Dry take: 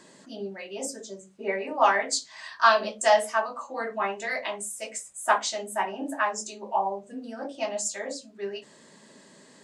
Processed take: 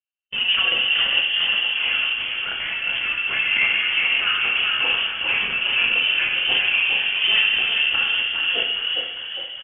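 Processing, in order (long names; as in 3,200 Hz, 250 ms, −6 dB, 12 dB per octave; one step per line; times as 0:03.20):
mains-hum notches 60/120/180/240/300 Hz
noise gate −41 dBFS, range −39 dB
parametric band 560 Hz +13 dB 0.4 octaves
leveller curve on the samples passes 5
compressor whose output falls as the input rises −19 dBFS, ratio −1
transient designer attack −10 dB, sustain +7 dB
high-frequency loss of the air 200 metres
echo with shifted repeats 408 ms, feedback 56%, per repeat −43 Hz, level −4 dB
dense smooth reverb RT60 1.5 s, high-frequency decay 0.55×, DRR −1 dB
voice inversion scrambler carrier 3,300 Hz
level −6 dB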